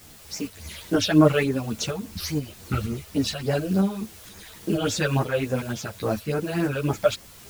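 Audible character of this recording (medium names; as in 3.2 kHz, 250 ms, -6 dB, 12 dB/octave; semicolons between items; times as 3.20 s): phasing stages 8, 3.5 Hz, lowest notch 250–3700 Hz; a quantiser's noise floor 8-bit, dither triangular; tremolo saw up 2.1 Hz, depth 40%; a shimmering, thickened sound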